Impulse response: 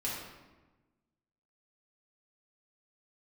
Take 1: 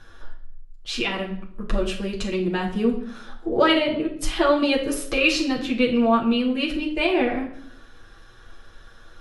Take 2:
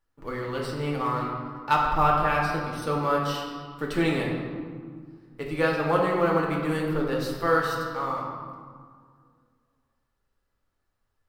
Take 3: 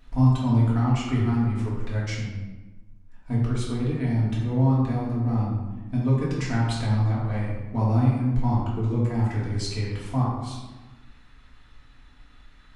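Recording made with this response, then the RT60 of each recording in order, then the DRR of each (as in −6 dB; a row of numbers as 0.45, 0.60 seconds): 3; 0.65, 1.9, 1.2 seconds; −4.0, −2.5, −7.0 decibels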